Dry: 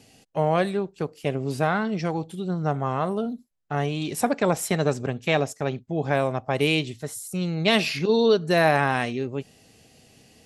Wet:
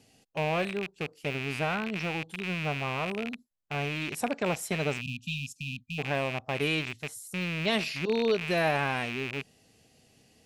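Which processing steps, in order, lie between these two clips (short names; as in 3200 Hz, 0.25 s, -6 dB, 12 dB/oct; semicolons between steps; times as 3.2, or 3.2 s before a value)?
rattling part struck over -34 dBFS, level -16 dBFS; spectral delete 5.01–5.99, 260–2400 Hz; gain -7.5 dB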